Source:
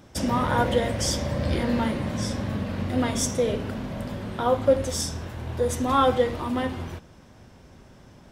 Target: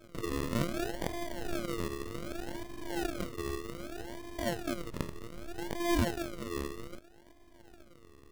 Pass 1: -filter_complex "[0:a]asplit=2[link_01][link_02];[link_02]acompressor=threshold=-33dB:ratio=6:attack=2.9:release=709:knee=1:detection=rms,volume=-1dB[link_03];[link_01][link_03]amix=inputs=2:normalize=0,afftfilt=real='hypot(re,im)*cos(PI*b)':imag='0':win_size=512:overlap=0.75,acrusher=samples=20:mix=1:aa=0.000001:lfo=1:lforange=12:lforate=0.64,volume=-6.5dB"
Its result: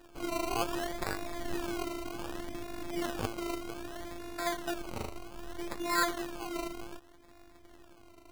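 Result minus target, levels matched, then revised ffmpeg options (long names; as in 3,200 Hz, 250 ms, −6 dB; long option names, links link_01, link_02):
sample-and-hold swept by an LFO: distortion −7 dB
-filter_complex "[0:a]asplit=2[link_01][link_02];[link_02]acompressor=threshold=-33dB:ratio=6:attack=2.9:release=709:knee=1:detection=rms,volume=-1dB[link_03];[link_01][link_03]amix=inputs=2:normalize=0,afftfilt=real='hypot(re,im)*cos(PI*b)':imag='0':win_size=512:overlap=0.75,acrusher=samples=45:mix=1:aa=0.000001:lfo=1:lforange=27:lforate=0.64,volume=-6.5dB"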